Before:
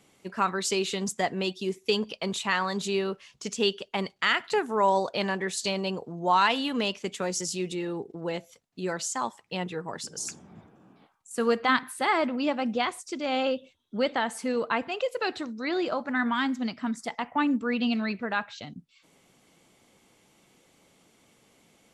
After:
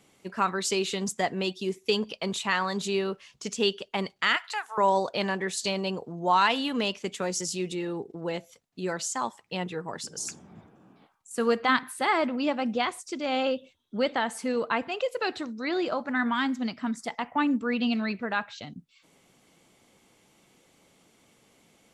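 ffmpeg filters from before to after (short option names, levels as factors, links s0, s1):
-filter_complex "[0:a]asettb=1/sr,asplit=3[s0][s1][s2];[s0]atrim=end=4.364[s3];[s1]atrim=start=4.36:end=4.78,asetpts=PTS-STARTPTS,afade=t=in:d=0.004:c=qsin,afade=t=out:st=0.416:d=0.004:c=qsin,highpass=f=820:w=0.5412,highpass=f=820:w=1.3066[s4];[s2]atrim=start=4.776[s5];[s3][s4]acrossfade=d=0.004:c1=hsin:c2=qsin[s6];[s6][s5]acrossfade=d=0.004:c1=qsin:c2=hsin"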